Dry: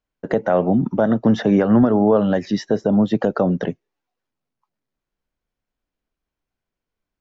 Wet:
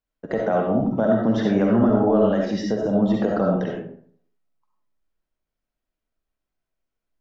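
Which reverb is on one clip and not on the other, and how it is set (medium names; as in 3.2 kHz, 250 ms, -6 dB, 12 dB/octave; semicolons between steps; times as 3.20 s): algorithmic reverb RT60 0.58 s, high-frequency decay 0.55×, pre-delay 25 ms, DRR -1.5 dB; trim -6 dB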